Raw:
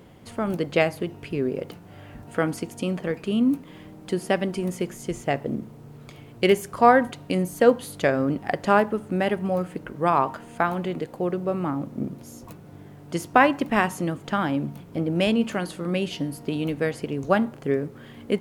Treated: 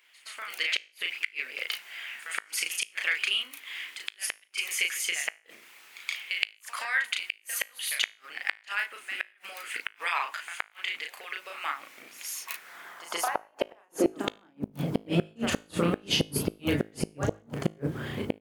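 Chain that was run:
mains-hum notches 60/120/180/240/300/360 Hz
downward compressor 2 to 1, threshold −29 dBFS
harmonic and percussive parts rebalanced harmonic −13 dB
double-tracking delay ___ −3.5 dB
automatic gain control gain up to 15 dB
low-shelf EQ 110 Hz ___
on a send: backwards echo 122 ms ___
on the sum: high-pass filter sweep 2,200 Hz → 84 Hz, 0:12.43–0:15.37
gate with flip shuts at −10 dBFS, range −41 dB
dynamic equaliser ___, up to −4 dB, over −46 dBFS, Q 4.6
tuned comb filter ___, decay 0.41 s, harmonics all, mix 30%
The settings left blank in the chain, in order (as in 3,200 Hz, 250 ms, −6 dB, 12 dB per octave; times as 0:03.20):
35 ms, +3 dB, −14.5 dB, 7,400 Hz, 53 Hz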